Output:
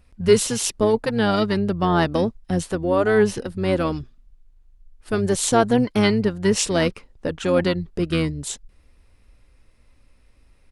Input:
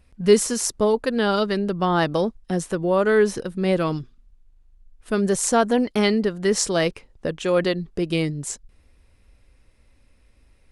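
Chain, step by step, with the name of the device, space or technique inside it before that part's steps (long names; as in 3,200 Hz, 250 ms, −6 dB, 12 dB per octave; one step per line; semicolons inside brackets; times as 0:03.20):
octave pedal (pitch-shifted copies added −12 semitones −7 dB)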